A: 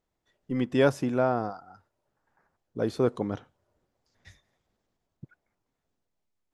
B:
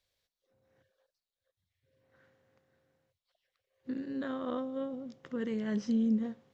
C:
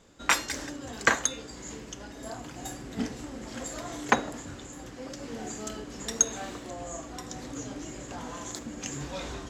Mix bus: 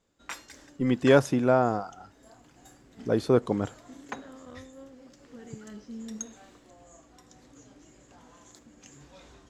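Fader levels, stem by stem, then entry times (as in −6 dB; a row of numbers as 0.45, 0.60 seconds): +3.0, −11.5, −15.5 decibels; 0.30, 0.00, 0.00 seconds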